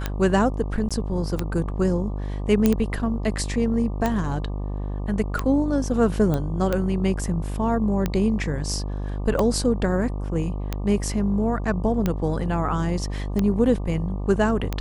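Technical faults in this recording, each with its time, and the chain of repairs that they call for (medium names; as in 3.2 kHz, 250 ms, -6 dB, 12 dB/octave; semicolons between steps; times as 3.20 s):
buzz 50 Hz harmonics 24 -28 dBFS
tick 45 rpm -10 dBFS
0.89–0.91 s: dropout 16 ms
2.66 s: pop -6 dBFS
6.34 s: pop -13 dBFS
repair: de-click; de-hum 50 Hz, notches 24; interpolate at 0.89 s, 16 ms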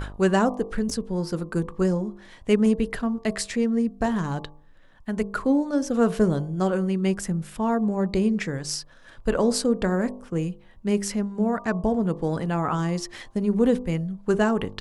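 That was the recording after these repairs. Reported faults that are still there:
nothing left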